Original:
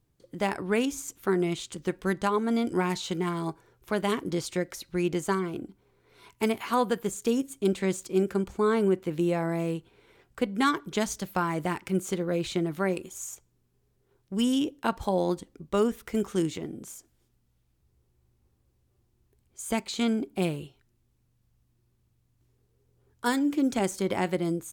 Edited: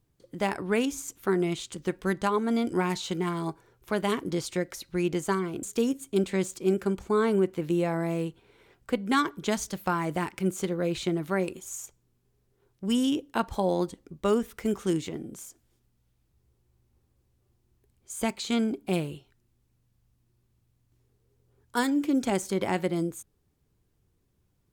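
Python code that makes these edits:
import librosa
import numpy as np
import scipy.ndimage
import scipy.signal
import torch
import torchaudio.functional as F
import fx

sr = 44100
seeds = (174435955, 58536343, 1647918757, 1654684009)

y = fx.edit(x, sr, fx.cut(start_s=5.63, length_s=1.49), tone=tone)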